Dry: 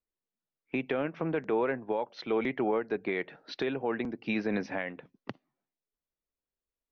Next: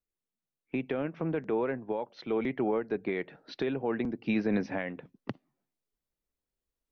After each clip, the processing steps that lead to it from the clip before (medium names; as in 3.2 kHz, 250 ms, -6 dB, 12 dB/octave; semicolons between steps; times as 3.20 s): gain riding within 4 dB 2 s; bass shelf 400 Hz +7.5 dB; trim -4 dB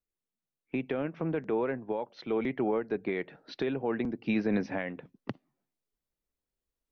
no audible change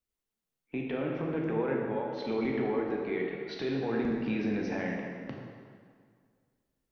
peak limiter -26 dBFS, peak gain reduction 7.5 dB; plate-style reverb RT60 2 s, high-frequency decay 0.8×, DRR -1.5 dB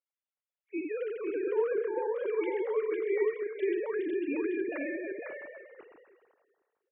formants replaced by sine waves; delay 503 ms -4.5 dB; trim -1 dB